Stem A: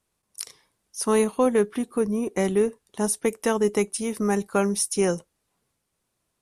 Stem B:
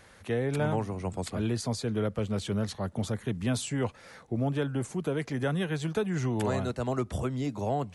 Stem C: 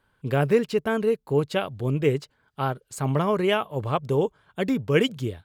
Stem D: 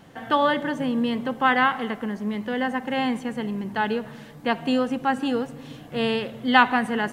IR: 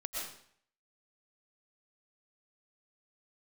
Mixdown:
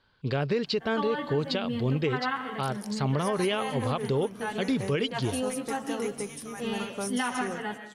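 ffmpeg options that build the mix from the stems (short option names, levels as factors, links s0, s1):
-filter_complex "[0:a]adelay=2250,volume=0.562,asplit=3[s0][s1][s2];[s1]volume=0.0841[s3];[s2]volume=0.398[s4];[1:a]adelay=2100,volume=0.237[s5];[2:a]lowpass=f=4500:t=q:w=4.3,volume=0.944[s6];[3:a]asplit=2[s7][s8];[s8]adelay=11,afreqshift=0.39[s9];[s7][s9]amix=inputs=2:normalize=1,adelay=650,volume=0.376,asplit=2[s10][s11];[s11]volume=0.447[s12];[s0][s5]amix=inputs=2:normalize=0,highpass=990,acompressor=threshold=0.00794:ratio=2.5,volume=1[s13];[4:a]atrim=start_sample=2205[s14];[s3][s12]amix=inputs=2:normalize=0[s15];[s15][s14]afir=irnorm=-1:irlink=0[s16];[s4]aecho=0:1:181:1[s17];[s6][s10][s13][s16][s17]amix=inputs=5:normalize=0,alimiter=limit=0.119:level=0:latency=1:release=122"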